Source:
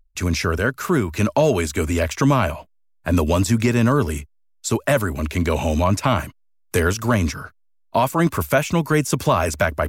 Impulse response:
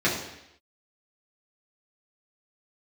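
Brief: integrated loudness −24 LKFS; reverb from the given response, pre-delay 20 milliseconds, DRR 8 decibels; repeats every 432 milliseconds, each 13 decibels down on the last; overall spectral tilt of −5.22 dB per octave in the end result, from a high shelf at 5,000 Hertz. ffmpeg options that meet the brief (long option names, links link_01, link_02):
-filter_complex "[0:a]highshelf=frequency=5000:gain=6,aecho=1:1:432|864|1296:0.224|0.0493|0.0108,asplit=2[link_01][link_02];[1:a]atrim=start_sample=2205,adelay=20[link_03];[link_02][link_03]afir=irnorm=-1:irlink=0,volume=-23dB[link_04];[link_01][link_04]amix=inputs=2:normalize=0,volume=-5dB"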